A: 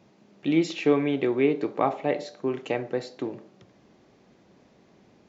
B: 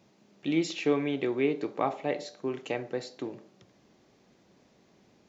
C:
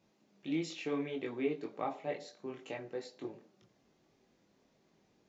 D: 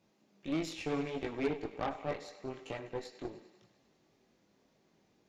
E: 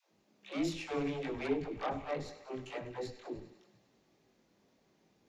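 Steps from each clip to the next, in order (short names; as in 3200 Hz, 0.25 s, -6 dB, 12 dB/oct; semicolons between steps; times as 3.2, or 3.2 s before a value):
high shelf 3900 Hz +8 dB; gain -5 dB
chorus voices 6, 0.64 Hz, delay 22 ms, depth 4 ms; gain -5.5 dB
thinning echo 0.1 s, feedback 73%, high-pass 410 Hz, level -13 dB; added harmonics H 8 -19 dB, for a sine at -20.5 dBFS
dispersion lows, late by 0.138 s, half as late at 330 Hz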